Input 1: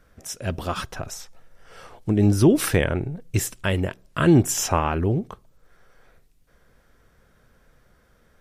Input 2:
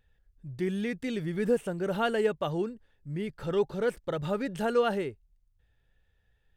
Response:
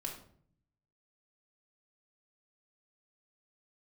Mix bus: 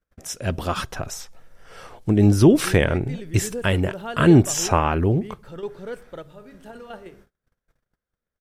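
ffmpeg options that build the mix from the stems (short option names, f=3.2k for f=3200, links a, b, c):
-filter_complex "[0:a]acrossover=split=8100[a][b];[b]acompressor=threshold=-37dB:ratio=4:attack=1:release=60[c];[a][c]amix=inputs=2:normalize=0,volume=2.5dB,asplit=2[d][e];[1:a]adelay=2050,volume=-5.5dB,asplit=2[f][g];[g]volume=-12dB[h];[e]apad=whole_len=379772[i];[f][i]sidechaingate=range=-16dB:threshold=-52dB:ratio=16:detection=peak[j];[2:a]atrim=start_sample=2205[k];[h][k]afir=irnorm=-1:irlink=0[l];[d][j][l]amix=inputs=3:normalize=0,agate=range=-31dB:threshold=-50dB:ratio=16:detection=peak"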